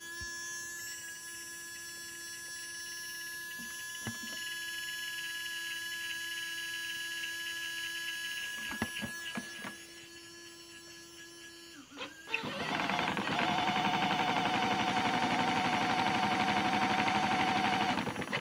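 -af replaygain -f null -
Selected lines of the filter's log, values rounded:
track_gain = +14.2 dB
track_peak = 0.117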